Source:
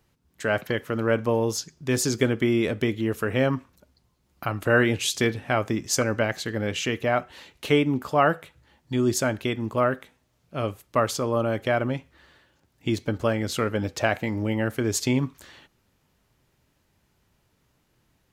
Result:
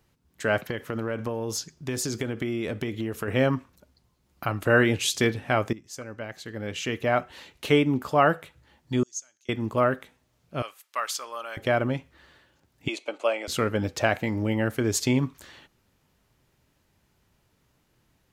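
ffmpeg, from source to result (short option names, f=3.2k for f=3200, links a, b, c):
-filter_complex "[0:a]asettb=1/sr,asplit=3[a][b][c];[a]atrim=end=0.584[d];[b]atrim=start=0.58:end=3.28,asetpts=PTS-STARTPTS,afade=t=in:d=0.004:c=qsin,afade=t=out:st=2.696:d=0.004:c=qsin,acompressor=threshold=-25dB:ratio=6:attack=3.2:release=140:knee=1:detection=peak[e];[c]atrim=start=3.276[f];[d][e]acrossfade=d=0.004:c1=hsin:c2=qsin[g];[g][f]acrossfade=d=0.004:c1=qsin:c2=hsin,asettb=1/sr,asplit=3[h][i][j];[h]atrim=end=9.034[k];[i]atrim=start=9.03:end=9.49,asetpts=PTS-STARTPTS,afade=t=in:d=0.004:c=qsin,afade=t=out:st=0.456:d=0.004:c=qsin,bandpass=f=6.4k:t=q:w=12[l];[j]atrim=start=9.486[m];[k][l]acrossfade=d=0.004:c1=hsin:c2=qsin[n];[n][m]acrossfade=d=0.004:c1=qsin:c2=hsin,asettb=1/sr,asplit=3[o][p][q];[o]atrim=end=10.624[r];[p]atrim=start=10.62:end=11.57,asetpts=PTS-STARTPTS,afade=t=in:d=0.004:c=qsin,afade=t=out:st=0.946:d=0.004:c=qsin,highpass=1.3k[s];[q]atrim=start=11.566[t];[r][s]acrossfade=d=0.004:c1=hsin:c2=qsin[u];[u][t]acrossfade=d=0.004:c1=qsin:c2=hsin,asettb=1/sr,asplit=3[v][w][x];[v]atrim=end=12.884[y];[w]atrim=start=12.88:end=13.48,asetpts=PTS-STARTPTS,afade=t=in:d=0.004:c=qsin,afade=t=out:st=0.596:d=0.004:c=qsin,highpass=f=410:w=0.5412,highpass=f=410:w=1.3066,equalizer=f=430:t=q:w=4:g=-7,equalizer=f=620:t=q:w=4:g=4,equalizer=f=1.7k:t=q:w=4:g=-9,equalizer=f=2.5k:t=q:w=4:g=9,equalizer=f=5.3k:t=q:w=4:g=-7,lowpass=f=9.5k:w=0.5412,lowpass=f=9.5k:w=1.3066[z];[x]atrim=start=13.476[aa];[y][z]acrossfade=d=0.004:c1=hsin:c2=qsin[ab];[ab][aa]acrossfade=d=0.004:c1=qsin:c2=hsin,asplit=2[ac][ad];[ac]atrim=end=5.73,asetpts=PTS-STARTPTS,afade=t=out:st=5.726:d=0.004:c=hsin:silence=0.141254[ae];[ad]atrim=start=5.73,asetpts=PTS-STARTPTS,afade=t=in:d=1.42:c=qua:silence=0.141254[af];[ae][af]concat=n=2:v=0:a=1"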